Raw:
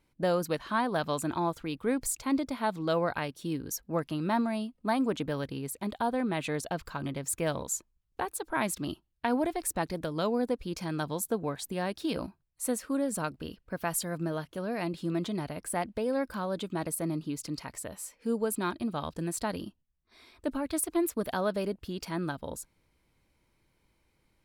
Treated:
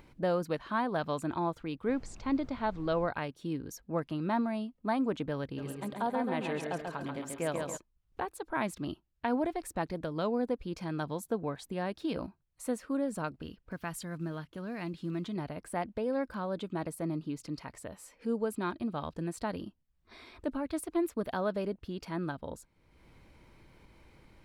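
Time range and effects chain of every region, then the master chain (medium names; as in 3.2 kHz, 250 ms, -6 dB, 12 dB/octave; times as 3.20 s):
1.87–3.06 s: low-pass 6.6 kHz 24 dB/octave + added noise brown -45 dBFS
5.57–7.76 s: high-pass 190 Hz 6 dB/octave + mains buzz 400 Hz, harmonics 4, -57 dBFS -3 dB/octave + feedback delay 137 ms, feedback 44%, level -4 dB
13.32–15.36 s: block-companded coder 7-bit + dynamic bell 590 Hz, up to -8 dB, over -47 dBFS, Q 1
whole clip: low-pass 2.7 kHz 6 dB/octave; upward compressor, threshold -41 dBFS; trim -2 dB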